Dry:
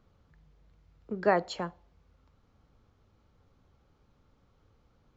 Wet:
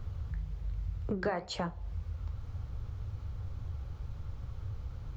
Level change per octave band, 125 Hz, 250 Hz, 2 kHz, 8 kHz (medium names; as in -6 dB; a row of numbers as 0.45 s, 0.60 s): +12.0 dB, -1.0 dB, -5.5 dB, no reading